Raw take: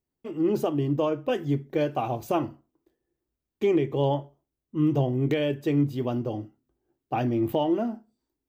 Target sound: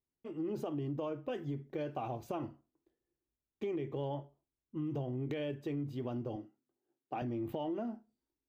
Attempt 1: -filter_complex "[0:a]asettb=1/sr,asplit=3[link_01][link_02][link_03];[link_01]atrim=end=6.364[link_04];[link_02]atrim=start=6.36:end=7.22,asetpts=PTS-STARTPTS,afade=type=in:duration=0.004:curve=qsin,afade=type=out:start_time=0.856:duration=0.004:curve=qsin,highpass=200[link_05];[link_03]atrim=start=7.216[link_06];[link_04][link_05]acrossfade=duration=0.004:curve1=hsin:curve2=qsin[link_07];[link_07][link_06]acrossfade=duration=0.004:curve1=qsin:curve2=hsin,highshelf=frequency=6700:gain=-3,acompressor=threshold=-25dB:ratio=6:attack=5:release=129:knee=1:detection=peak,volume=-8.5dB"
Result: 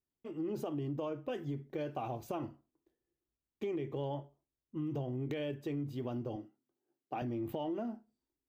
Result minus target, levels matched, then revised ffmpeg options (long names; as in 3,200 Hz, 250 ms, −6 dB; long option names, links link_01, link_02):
8,000 Hz band +3.0 dB
-filter_complex "[0:a]asettb=1/sr,asplit=3[link_01][link_02][link_03];[link_01]atrim=end=6.364[link_04];[link_02]atrim=start=6.36:end=7.22,asetpts=PTS-STARTPTS,afade=type=in:duration=0.004:curve=qsin,afade=type=out:start_time=0.856:duration=0.004:curve=qsin,highpass=200[link_05];[link_03]atrim=start=7.216[link_06];[link_04][link_05]acrossfade=duration=0.004:curve1=hsin:curve2=qsin[link_07];[link_07][link_06]acrossfade=duration=0.004:curve1=qsin:curve2=hsin,highshelf=frequency=6700:gain=-9,acompressor=threshold=-25dB:ratio=6:attack=5:release=129:knee=1:detection=peak,volume=-8.5dB"